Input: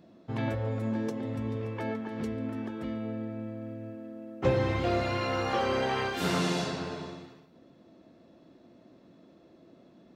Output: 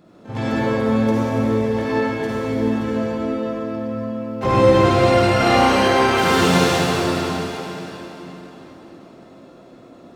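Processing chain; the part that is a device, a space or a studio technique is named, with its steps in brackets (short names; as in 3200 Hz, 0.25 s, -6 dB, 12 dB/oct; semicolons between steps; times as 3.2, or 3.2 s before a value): shimmer-style reverb (harmoniser +12 st -9 dB; reverb RT60 4.0 s, pre-delay 47 ms, DRR -8.5 dB); 5.37–5.88 doubler 34 ms -3 dB; gain +4 dB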